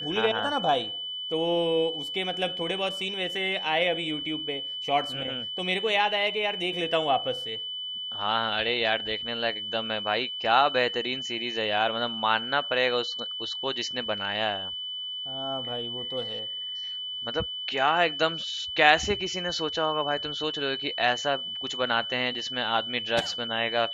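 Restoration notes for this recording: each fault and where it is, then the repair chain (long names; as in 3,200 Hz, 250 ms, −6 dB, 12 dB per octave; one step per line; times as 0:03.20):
whistle 3,000 Hz −32 dBFS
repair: notch filter 3,000 Hz, Q 30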